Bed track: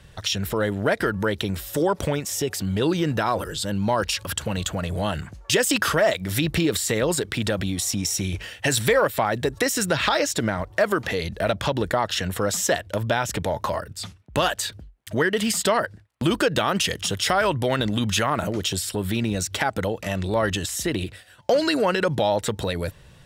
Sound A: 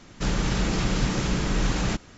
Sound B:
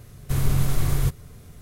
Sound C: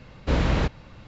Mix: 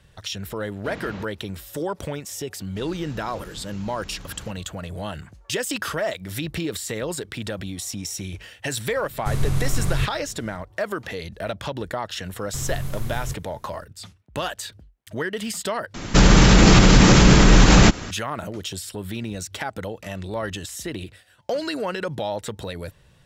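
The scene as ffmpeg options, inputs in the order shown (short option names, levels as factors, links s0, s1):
-filter_complex "[1:a]asplit=2[s0][s1];[2:a]asplit=2[s2][s3];[0:a]volume=0.501[s4];[3:a]highpass=120[s5];[s2]lowpass=10000[s6];[s1]alimiter=level_in=7.94:limit=0.891:release=50:level=0:latency=1[s7];[s4]asplit=2[s8][s9];[s8]atrim=end=15.944[s10];[s7]atrim=end=2.17,asetpts=PTS-STARTPTS,volume=0.794[s11];[s9]atrim=start=18.106[s12];[s5]atrim=end=1.07,asetpts=PTS-STARTPTS,volume=0.251,afade=t=in:d=0.004:c=hsin,afade=t=out:st=1.066:d=0.004:c=hsin,adelay=570[s13];[s0]atrim=end=2.17,asetpts=PTS-STARTPTS,volume=0.126,afade=t=in:d=0.004:c=hsin,afade=t=out:st=2.166:d=0.004:c=hsin,adelay=2550[s14];[s6]atrim=end=1.61,asetpts=PTS-STARTPTS,volume=0.891,afade=t=in:d=0.004:c=hsin,afade=t=out:st=1.606:d=0.004:c=hsin,adelay=8960[s15];[s3]atrim=end=1.61,asetpts=PTS-STARTPTS,volume=0.398,afade=t=in:d=0.004:c=hsin,afade=t=out:st=1.606:d=0.004:c=hsin,adelay=12240[s16];[s10][s11]acrossfade=d=0.004:c1=hsin:c2=hsin[s17];[s17][s12]acrossfade=d=0.004:c1=hsin:c2=hsin[s18];[s18][s13][s14][s15][s16]amix=inputs=5:normalize=0"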